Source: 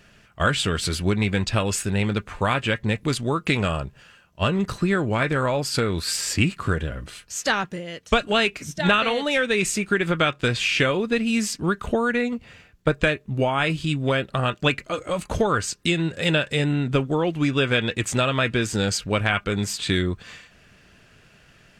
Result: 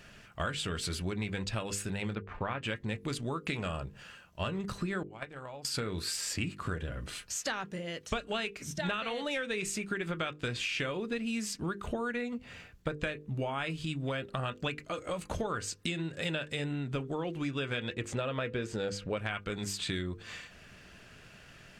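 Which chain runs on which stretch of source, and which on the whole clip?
2.15–2.63 s: companding laws mixed up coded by A + low-pass 2.3 kHz
5.03–5.65 s: gate -19 dBFS, range -23 dB + small resonant body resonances 780/2900 Hz, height 7 dB, ringing for 20 ms
17.94–19.17 s: low-pass 3 kHz 6 dB/octave + peaking EQ 490 Hz +7.5 dB 0.42 oct
whole clip: hum notches 50/100/150/200/250/300/350/400/450/500 Hz; compression 3:1, threshold -36 dBFS

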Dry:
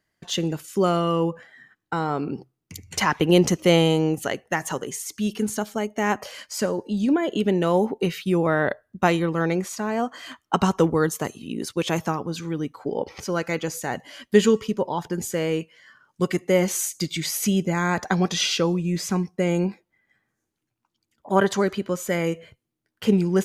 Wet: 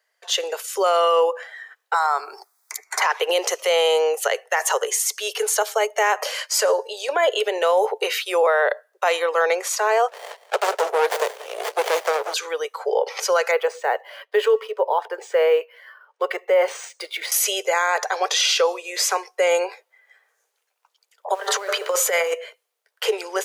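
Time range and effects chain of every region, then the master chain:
1.94–3.02 s: static phaser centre 1.2 kHz, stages 4 + three bands compressed up and down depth 70%
10.08–12.34 s: treble shelf 4.7 kHz +9.5 dB + delay 184 ms -16.5 dB + sliding maximum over 33 samples
13.51–17.32 s: tape spacing loss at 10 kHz 26 dB + decimation joined by straight lines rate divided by 3×
21.33–22.33 s: de-hum 85.74 Hz, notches 21 + compressor with a negative ratio -27 dBFS, ratio -0.5 + added noise brown -39 dBFS
whole clip: level rider gain up to 6.5 dB; steep high-pass 440 Hz 72 dB/octave; peak limiter -15 dBFS; trim +5 dB

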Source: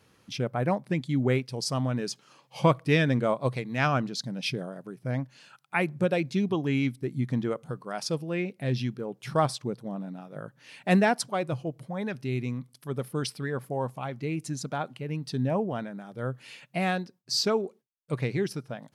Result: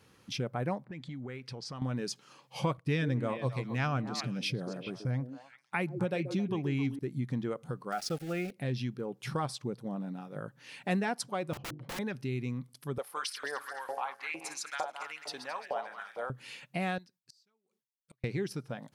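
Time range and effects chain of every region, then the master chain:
0.84–1.82 s: level-controlled noise filter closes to 1 kHz, open at -22.5 dBFS + peaking EQ 1.6 kHz +6.5 dB 1.4 oct + compression 10:1, threshold -38 dBFS
2.77–6.99 s: gate -49 dBFS, range -12 dB + peaking EQ 100 Hz +7.5 dB 1.1 oct + repeats whose band climbs or falls 132 ms, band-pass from 350 Hz, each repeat 1.4 oct, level -6.5 dB
7.92–8.51 s: high-order bell 1 kHz +13 dB 1.1 oct + small samples zeroed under -39.5 dBFS + Butterworth band-stop 1 kHz, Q 1.7
11.53–11.99 s: low-pass 2.1 kHz + hum notches 50/100/150/200/250/300/350/400 Hz + integer overflow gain 34 dB
12.98–16.30 s: backward echo that repeats 108 ms, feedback 61%, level -9 dB + bass shelf 75 Hz -11.5 dB + LFO high-pass saw up 2.2 Hz 590–2100 Hz
16.98–18.24 s: amplifier tone stack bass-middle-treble 5-5-5 + inverted gate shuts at -41 dBFS, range -35 dB
whole clip: compression 2:1, threshold -34 dBFS; band-stop 640 Hz, Q 12

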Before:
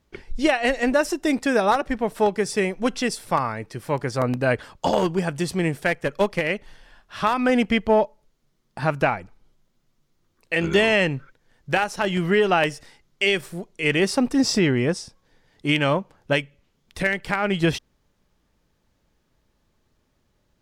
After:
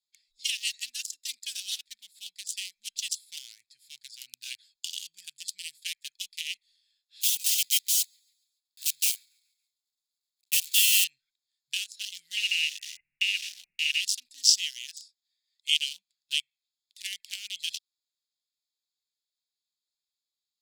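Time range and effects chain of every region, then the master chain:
7.21–11.05 s: block-companded coder 3-bit + frequency-shifting echo 140 ms, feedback 50%, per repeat -32 Hz, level -21 dB
12.37–14.01 s: brick-wall FIR low-pass 2.9 kHz + bass shelf 400 Hz +11.5 dB + spectrum-flattening compressor 10:1
14.59–15.75 s: Chebyshev high-pass 680 Hz, order 5 + peaking EQ 1.8 kHz +5 dB 0.76 oct
whole clip: local Wiener filter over 15 samples; elliptic high-pass 3 kHz, stop band 60 dB; treble shelf 4.2 kHz +9 dB; trim +2.5 dB

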